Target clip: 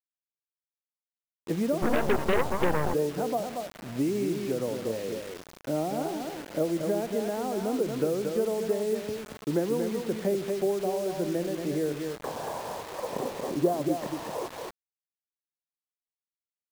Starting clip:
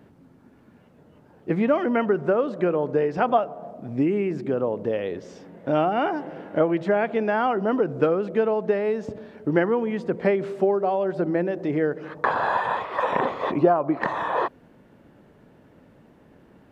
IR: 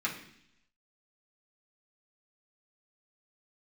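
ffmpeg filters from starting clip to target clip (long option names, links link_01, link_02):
-filter_complex "[0:a]aecho=1:1:231:0.501,acrossover=split=410|680[link_01][link_02][link_03];[link_03]acompressor=threshold=-43dB:ratio=6[link_04];[link_01][link_02][link_04]amix=inputs=3:normalize=0,asettb=1/sr,asplit=3[link_05][link_06][link_07];[link_05]atrim=end=1.824[link_08];[link_06]atrim=start=1.82:end=2.94,asetpts=PTS-STARTPTS,afade=type=in:duration=0.004:curve=qsin,afade=type=out:start_time=1.116:duration=0.004:curve=qsin,aeval=exprs='0.299*(cos(1*acos(clip(val(0)/0.299,-1,1)))-cos(1*PI/2))+0.0119*(cos(4*acos(clip(val(0)/0.299,-1,1)))-cos(4*PI/2))+0.0266*(cos(7*acos(clip(val(0)/0.299,-1,1)))-cos(7*PI/2))+0.0841*(cos(8*acos(clip(val(0)/0.299,-1,1)))-cos(8*PI/2))':channel_layout=same[link_09];[link_07]atrim=start=2.936[link_10];[link_08][link_09]acrossfade=duration=0.004:curve1=hsin:curve2=qsin[link_11];[link_11][link_10]acrossfade=duration=0.004:curve1=qsin:curve2=hsin,acrusher=bits=5:mix=0:aa=0.000001,volume=-5.5dB"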